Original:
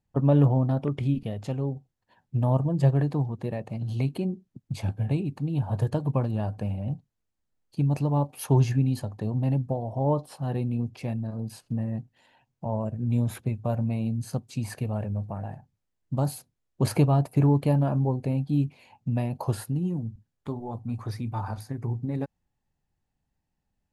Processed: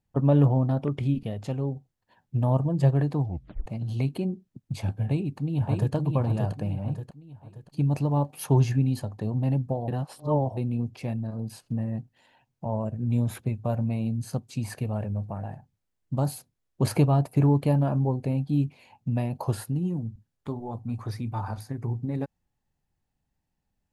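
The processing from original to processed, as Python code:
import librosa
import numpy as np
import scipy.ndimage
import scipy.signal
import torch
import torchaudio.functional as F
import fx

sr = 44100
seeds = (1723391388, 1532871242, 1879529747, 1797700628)

y = fx.echo_throw(x, sr, start_s=5.02, length_s=0.92, ms=580, feedback_pct=40, wet_db=-3.5)
y = fx.edit(y, sr, fx.tape_stop(start_s=3.23, length_s=0.43),
    fx.reverse_span(start_s=9.88, length_s=0.69), tone=tone)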